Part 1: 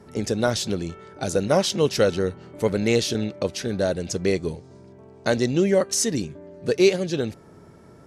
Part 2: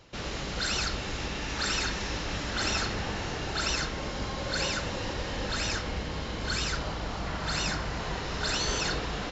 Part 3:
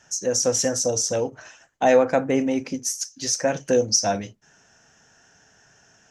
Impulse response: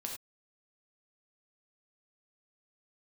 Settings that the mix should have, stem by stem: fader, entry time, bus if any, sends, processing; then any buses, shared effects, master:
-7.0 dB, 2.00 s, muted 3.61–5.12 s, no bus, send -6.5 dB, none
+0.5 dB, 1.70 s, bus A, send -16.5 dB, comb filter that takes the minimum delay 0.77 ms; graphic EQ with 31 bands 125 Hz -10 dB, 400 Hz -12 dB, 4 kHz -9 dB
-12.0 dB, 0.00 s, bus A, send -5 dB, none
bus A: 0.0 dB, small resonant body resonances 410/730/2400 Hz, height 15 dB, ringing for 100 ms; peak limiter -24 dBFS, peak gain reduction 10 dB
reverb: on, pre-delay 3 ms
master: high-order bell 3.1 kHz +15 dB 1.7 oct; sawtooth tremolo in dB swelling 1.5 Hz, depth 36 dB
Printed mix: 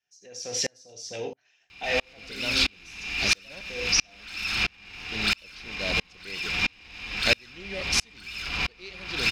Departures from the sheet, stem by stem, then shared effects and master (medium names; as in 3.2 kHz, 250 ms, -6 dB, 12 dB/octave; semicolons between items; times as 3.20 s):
stem 1: send -6.5 dB -> -12.5 dB; stem 2 +0.5 dB -> +12.0 dB; stem 3 -12.0 dB -> -6.0 dB